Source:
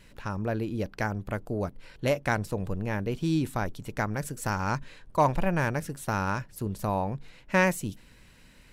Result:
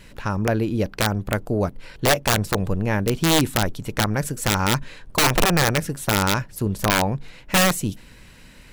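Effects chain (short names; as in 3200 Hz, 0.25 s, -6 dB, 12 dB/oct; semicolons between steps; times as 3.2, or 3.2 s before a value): wrapped overs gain 19 dB; gain +8.5 dB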